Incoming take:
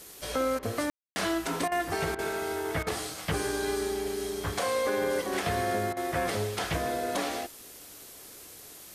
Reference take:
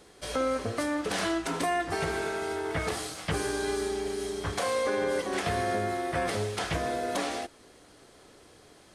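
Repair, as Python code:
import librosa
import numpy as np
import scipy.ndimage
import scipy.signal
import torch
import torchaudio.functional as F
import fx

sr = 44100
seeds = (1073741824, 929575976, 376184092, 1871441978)

y = fx.fix_ambience(x, sr, seeds[0], print_start_s=7.5, print_end_s=8.0, start_s=0.9, end_s=1.16)
y = fx.fix_interpolate(y, sr, at_s=(0.59, 1.68, 2.15, 2.83, 5.93), length_ms=36.0)
y = fx.noise_reduce(y, sr, print_start_s=7.5, print_end_s=8.0, reduce_db=7.0)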